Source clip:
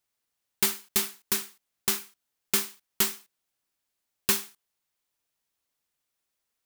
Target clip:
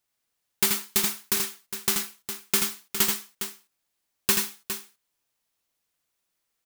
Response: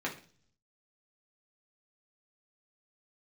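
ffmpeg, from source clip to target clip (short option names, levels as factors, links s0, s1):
-af "aecho=1:1:81|87|409:0.501|0.335|0.335,volume=1.19"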